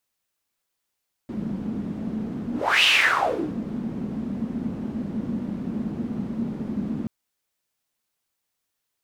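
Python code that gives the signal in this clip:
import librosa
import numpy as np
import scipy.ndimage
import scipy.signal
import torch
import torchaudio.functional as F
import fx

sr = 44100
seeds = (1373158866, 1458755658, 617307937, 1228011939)

y = fx.whoosh(sr, seeds[0], length_s=5.78, peak_s=1.55, rise_s=0.34, fall_s=0.78, ends_hz=220.0, peak_hz=2900.0, q=6.0, swell_db=12.0)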